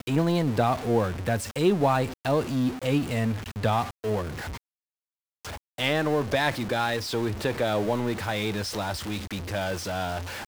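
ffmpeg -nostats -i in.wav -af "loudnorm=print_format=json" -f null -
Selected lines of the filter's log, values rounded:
"input_i" : "-27.4",
"input_tp" : "-9.3",
"input_lra" : "4.2",
"input_thresh" : "-37.6",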